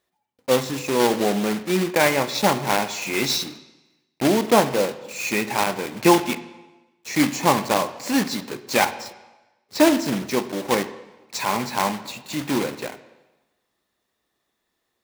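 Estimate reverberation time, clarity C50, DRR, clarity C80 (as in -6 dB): 1.1 s, 14.0 dB, 11.5 dB, 15.5 dB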